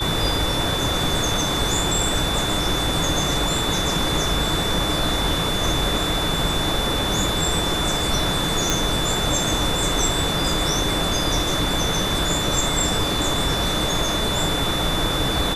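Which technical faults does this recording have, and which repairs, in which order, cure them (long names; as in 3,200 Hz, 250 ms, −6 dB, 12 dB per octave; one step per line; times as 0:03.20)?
whistle 3,500 Hz −25 dBFS
0:08.70: click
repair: click removal
notch filter 3,500 Hz, Q 30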